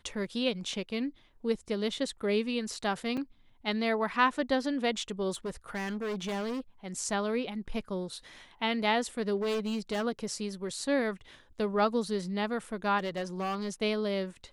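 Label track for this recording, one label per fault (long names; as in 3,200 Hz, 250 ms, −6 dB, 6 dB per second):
3.170000	3.180000	drop-out 5.2 ms
5.310000	6.600000	clipping −31 dBFS
9.360000	10.050000	clipping −28 dBFS
12.980000	13.690000	clipping −29.5 dBFS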